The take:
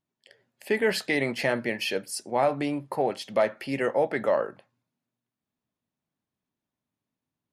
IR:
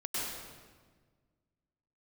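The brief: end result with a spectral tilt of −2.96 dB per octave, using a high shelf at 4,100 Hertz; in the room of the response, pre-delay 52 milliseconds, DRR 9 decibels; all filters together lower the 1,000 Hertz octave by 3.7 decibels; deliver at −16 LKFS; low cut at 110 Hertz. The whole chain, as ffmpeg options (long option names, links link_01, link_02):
-filter_complex "[0:a]highpass=110,equalizer=frequency=1000:width_type=o:gain=-6,highshelf=frequency=4100:gain=9,asplit=2[link_01][link_02];[1:a]atrim=start_sample=2205,adelay=52[link_03];[link_02][link_03]afir=irnorm=-1:irlink=0,volume=-14dB[link_04];[link_01][link_04]amix=inputs=2:normalize=0,volume=11dB"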